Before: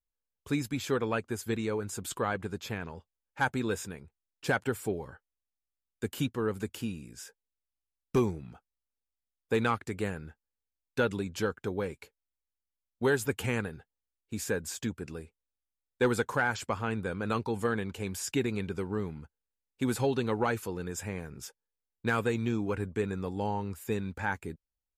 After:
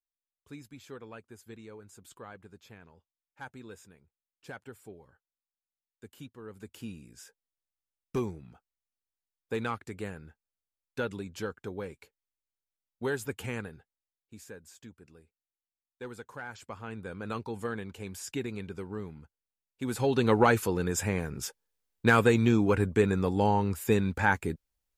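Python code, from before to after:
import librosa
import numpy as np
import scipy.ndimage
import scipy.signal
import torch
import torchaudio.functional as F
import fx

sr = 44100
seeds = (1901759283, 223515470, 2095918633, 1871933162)

y = fx.gain(x, sr, db=fx.line((6.42, -15.5), (6.9, -5.0), (13.72, -5.0), (14.55, -15.5), (16.21, -15.5), (17.2, -5.0), (19.82, -5.0), (20.3, 7.0)))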